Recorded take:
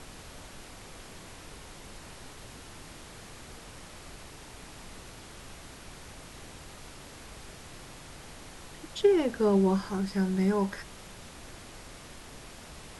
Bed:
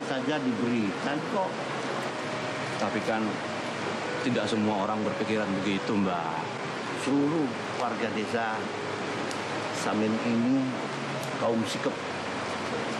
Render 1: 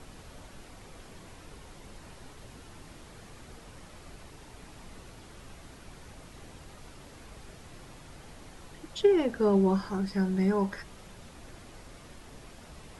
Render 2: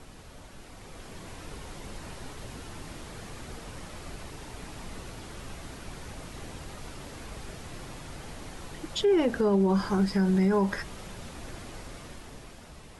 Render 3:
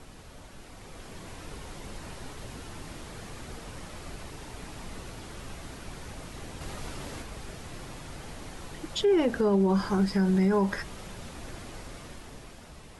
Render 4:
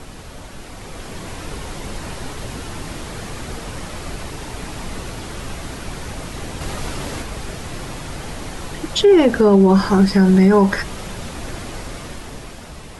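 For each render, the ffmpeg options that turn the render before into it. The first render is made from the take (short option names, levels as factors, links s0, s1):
-af "afftdn=nr=6:nf=-48"
-af "dynaudnorm=f=160:g=13:m=2.24,alimiter=limit=0.141:level=0:latency=1:release=74"
-filter_complex "[0:a]asplit=3[s0][s1][s2];[s0]atrim=end=6.612[s3];[s1]atrim=start=6.608:end=7.222,asetpts=PTS-STARTPTS,volume=1.5[s4];[s2]atrim=start=7.218[s5];[s3][s4]acrossfade=d=0.004:c1=hsin:c2=hsin[s6];[s6][s5]acrossfade=d=0.004:c1=hsin:c2=hsin"
-af "volume=3.98"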